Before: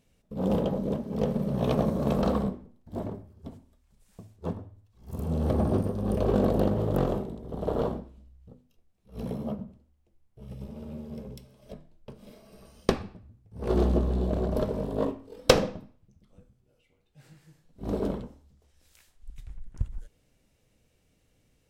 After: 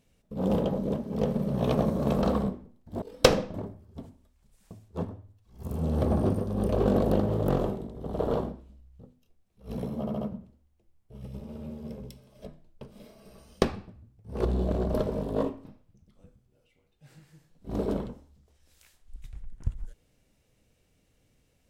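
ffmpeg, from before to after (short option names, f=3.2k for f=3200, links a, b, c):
-filter_complex "[0:a]asplit=8[a][b][c][d][e][f][g][h];[a]atrim=end=3.022[i];[b]atrim=start=15.268:end=15.792[j];[c]atrim=start=3.018:end=9.552[k];[d]atrim=start=9.478:end=9.552[l];[e]atrim=start=9.478:end=9.552[m];[f]atrim=start=9.478:end=13.722[n];[g]atrim=start=14.068:end=15.272[o];[h]atrim=start=15.788[p];[i][j]acrossfade=d=0.004:c1=hsin:c2=hsin[q];[q][k]acrossfade=d=0.004:c1=hsin:c2=hsin[r];[r][l]acrossfade=d=0.004:c1=hsin:c2=hsin[s];[s][m]acrossfade=d=0.004:c1=hsin:c2=hsin[t];[t][n]acrossfade=d=0.004:c1=hsin:c2=hsin[u];[u][o]acrossfade=d=0.004:c1=hsin:c2=hsin[v];[v][p]acrossfade=d=0.004:c1=hsin:c2=hsin"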